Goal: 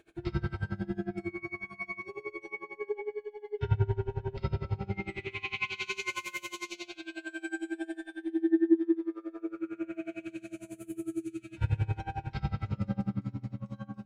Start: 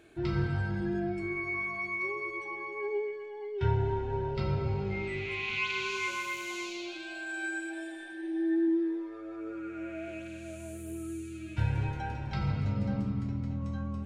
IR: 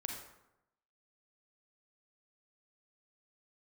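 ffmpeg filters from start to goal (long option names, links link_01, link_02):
-filter_complex "[0:a]asettb=1/sr,asplit=3[link_01][link_02][link_03];[link_01]atrim=end=5.774[link_04];[link_02]atrim=start=5.77:end=6.87,asetpts=PTS-STARTPTS,afade=type=in:duration=0.004:curve=qsin,afade=type=out:start_time=1.096:duration=0.004:curve=qsin,highshelf=frequency=5100:gain=6[link_05];[link_03]atrim=start=6.866[link_06];[link_04][link_05]acrossfade=duration=0.004:curve1=hsin:curve2=qsin[link_07];[link_07][link_06]acrossfade=duration=0.004:curve1=qsin:curve2=hsin,bandreject=frequency=82.09:width_type=h:width=4,bandreject=frequency=164.18:width_type=h:width=4,bandreject=frequency=246.27:width_type=h:width=4[link_08];[1:a]atrim=start_sample=2205,asetrate=61740,aresample=44100[link_09];[link_08][link_09]afir=irnorm=-1:irlink=0,aeval=exprs='val(0)*pow(10,-24*(0.5-0.5*cos(2*PI*11*n/s))/20)':channel_layout=same,volume=5.5dB"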